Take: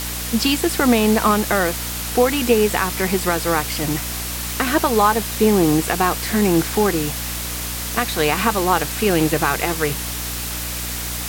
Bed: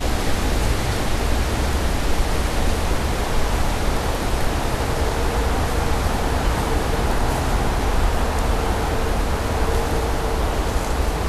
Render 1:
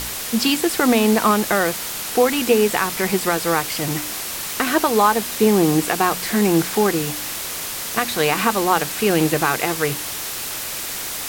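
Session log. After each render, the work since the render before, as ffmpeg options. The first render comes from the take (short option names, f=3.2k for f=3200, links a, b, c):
-af "bandreject=f=60:t=h:w=4,bandreject=f=120:t=h:w=4,bandreject=f=180:t=h:w=4,bandreject=f=240:t=h:w=4,bandreject=f=300:t=h:w=4"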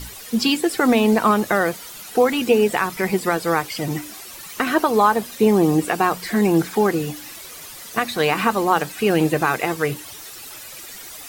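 -af "afftdn=nr=13:nf=-28"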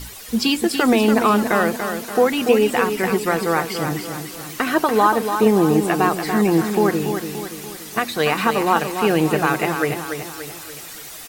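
-af "aecho=1:1:288|576|864|1152|1440|1728:0.422|0.207|0.101|0.0496|0.0243|0.0119"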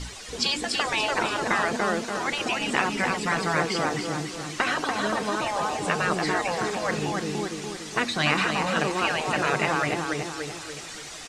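-af "lowpass=f=7.8k:w=0.5412,lowpass=f=7.8k:w=1.3066,afftfilt=real='re*lt(hypot(re,im),0.447)':imag='im*lt(hypot(re,im),0.447)':win_size=1024:overlap=0.75"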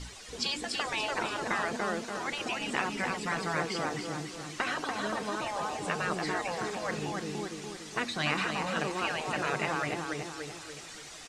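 -af "volume=-7dB"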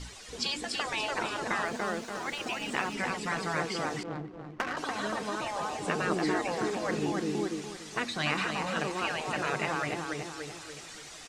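-filter_complex "[0:a]asettb=1/sr,asplit=3[a][b][c];[a]atrim=end=1.654[d];[b]atrim=start=1.65:end=2.94,asetpts=PTS-STARTPTS,afade=t=in:d=0.004:c=qsin,afade=t=out:st=1.286:d=0.004:c=qsin,aeval=exprs='sgn(val(0))*max(abs(val(0))-0.002,0)':c=same[e];[c]atrim=start=2.936[f];[d][e]acrossfade=d=0.004:c1=hsin:c2=qsin[g];[g][f]acrossfade=d=0.004:c1=qsin:c2=hsin,asettb=1/sr,asplit=3[h][i][j];[h]atrim=end=4.034[k];[i]atrim=start=4.03:end=4.77,asetpts=PTS-STARTPTS,afade=t=in:d=0.004:c=qsin,afade=t=out:st=0.736:d=0.004:c=qsin,adynamicsmooth=sensitivity=3:basefreq=560[l];[j]atrim=start=4.766[m];[k][l]acrossfade=d=0.004:c1=hsin:c2=qsin[n];[n][m]acrossfade=d=0.004:c1=qsin:c2=hsin,asettb=1/sr,asplit=3[o][p][q];[o]atrim=end=5.884[r];[p]atrim=start=5.88:end=7.62,asetpts=PTS-STARTPTS,afade=t=in:d=0.004:c=qsin,afade=t=out:st=1.736:d=0.004:c=qsin,equalizer=f=310:w=1.3:g=8.5[s];[q]atrim=start=7.616[t];[r][s]acrossfade=d=0.004:c1=hsin:c2=qsin[u];[u][t]acrossfade=d=0.004:c1=qsin:c2=hsin"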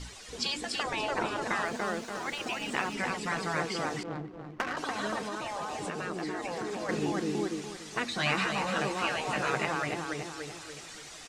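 -filter_complex "[0:a]asettb=1/sr,asplit=3[a][b][c];[a]atrim=end=0.834[d];[b]atrim=start=0.83:end=1.42,asetpts=PTS-STARTPTS,afade=t=in:d=0.004:c=qsin,afade=t=out:st=0.586:d=0.004:c=qsin,tiltshelf=f=1.4k:g=4[e];[c]atrim=start=1.416[f];[d][e]acrossfade=d=0.004:c1=hsin:c2=qsin[g];[g][f]acrossfade=d=0.004:c1=qsin:c2=hsin,asettb=1/sr,asplit=3[h][i][j];[h]atrim=end=5.214[k];[i]atrim=start=5.21:end=6.89,asetpts=PTS-STARTPTS,afade=t=in:d=0.004:c=qsin,afade=t=out:st=1.676:d=0.004:c=qsin,acompressor=threshold=-31dB:ratio=6:attack=3.2:release=140:knee=1:detection=peak[l];[j]atrim=start=6.886[m];[k][l]acrossfade=d=0.004:c1=hsin:c2=qsin[n];[n][m]acrossfade=d=0.004:c1=qsin:c2=hsin,asettb=1/sr,asplit=3[o][p][q];[o]atrim=end=8.104[r];[p]atrim=start=8.1:end=9.65,asetpts=PTS-STARTPTS,afade=t=in:d=0.004:c=qsin,afade=t=out:st=1.546:d=0.004:c=qsin,asplit=2[s][t];[t]adelay=15,volume=-4.5dB[u];[s][u]amix=inputs=2:normalize=0,atrim=end_sample=68355[v];[q]atrim=start=9.646[w];[r][v]acrossfade=d=0.004:c1=hsin:c2=qsin[x];[x][w]acrossfade=d=0.004:c1=qsin:c2=hsin"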